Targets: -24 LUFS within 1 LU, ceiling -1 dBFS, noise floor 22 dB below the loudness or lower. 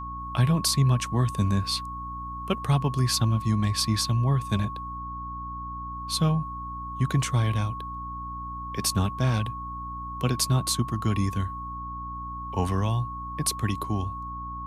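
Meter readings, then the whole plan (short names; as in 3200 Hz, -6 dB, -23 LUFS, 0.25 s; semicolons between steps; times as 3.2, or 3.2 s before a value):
hum 60 Hz; harmonics up to 300 Hz; hum level -38 dBFS; steady tone 1100 Hz; tone level -34 dBFS; loudness -27.5 LUFS; peak -10.0 dBFS; loudness target -24.0 LUFS
-> de-hum 60 Hz, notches 5; notch 1100 Hz, Q 30; gain +3.5 dB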